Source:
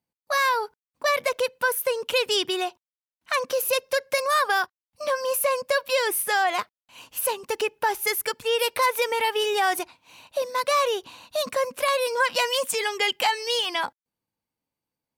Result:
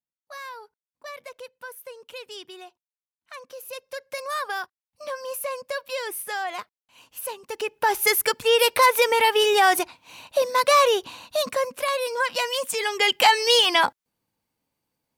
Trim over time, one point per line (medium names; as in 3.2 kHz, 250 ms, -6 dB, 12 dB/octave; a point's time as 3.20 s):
3.49 s -16 dB
4.31 s -7 dB
7.46 s -7 dB
7.98 s +5 dB
11.07 s +5 dB
11.84 s -2 dB
12.66 s -2 dB
13.36 s +7.5 dB